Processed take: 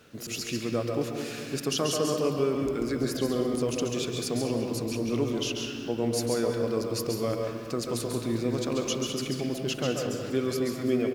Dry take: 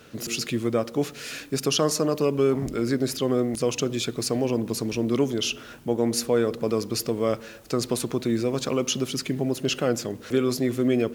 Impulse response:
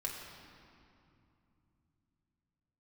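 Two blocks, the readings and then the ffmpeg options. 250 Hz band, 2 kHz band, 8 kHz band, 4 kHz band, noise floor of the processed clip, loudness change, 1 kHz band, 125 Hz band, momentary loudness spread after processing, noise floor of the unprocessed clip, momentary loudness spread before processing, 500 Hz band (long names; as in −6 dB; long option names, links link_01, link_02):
−3.5 dB, −3.5 dB, −4.5 dB, −4.0 dB, −38 dBFS, −3.5 dB, −3.5 dB, −3.0 dB, 5 LU, −44 dBFS, 6 LU, −3.5 dB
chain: -filter_complex "[0:a]asplit=2[link_01][link_02];[link_02]adelay=198.3,volume=-11dB,highshelf=frequency=4000:gain=-4.46[link_03];[link_01][link_03]amix=inputs=2:normalize=0,asplit=2[link_04][link_05];[1:a]atrim=start_sample=2205,adelay=136[link_06];[link_05][link_06]afir=irnorm=-1:irlink=0,volume=-3dB[link_07];[link_04][link_07]amix=inputs=2:normalize=0,volume=-6dB"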